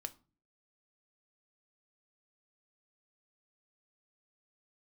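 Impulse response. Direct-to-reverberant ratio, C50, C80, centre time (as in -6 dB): 9.0 dB, 20.0 dB, 25.5 dB, 4 ms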